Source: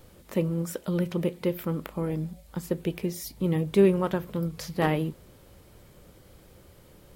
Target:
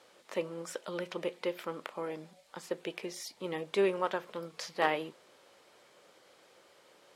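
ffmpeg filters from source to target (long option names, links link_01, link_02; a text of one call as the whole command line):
ffmpeg -i in.wav -af "highpass=580,lowpass=6700" out.wav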